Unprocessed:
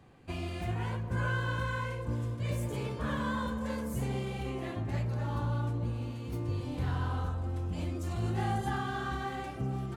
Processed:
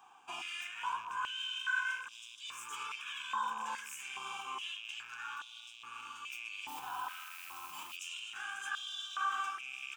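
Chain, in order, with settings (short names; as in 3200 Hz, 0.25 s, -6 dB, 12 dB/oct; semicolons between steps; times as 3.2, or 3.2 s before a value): rattling part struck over -35 dBFS, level -41 dBFS; high shelf 3200 Hz +7.5 dB; fixed phaser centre 2900 Hz, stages 8; 6.67–7.95 added noise blue -52 dBFS; limiter -31 dBFS, peak gain reduction 9 dB; stepped high-pass 2.4 Hz 820–3600 Hz; gain +1.5 dB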